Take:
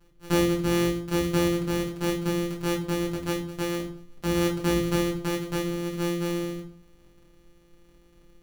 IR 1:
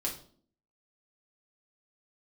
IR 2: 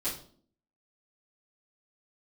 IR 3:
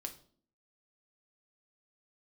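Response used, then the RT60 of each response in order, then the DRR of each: 1; 0.50 s, 0.50 s, 0.50 s; -2.5 dB, -12.5 dB, 4.5 dB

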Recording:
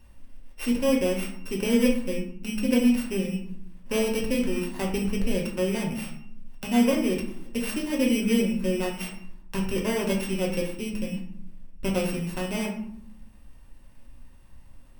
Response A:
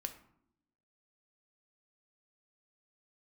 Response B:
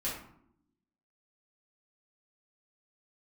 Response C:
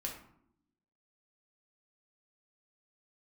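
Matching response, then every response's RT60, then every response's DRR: C; 0.75 s, 0.70 s, 0.70 s; 6.5 dB, -8.5 dB, -1.0 dB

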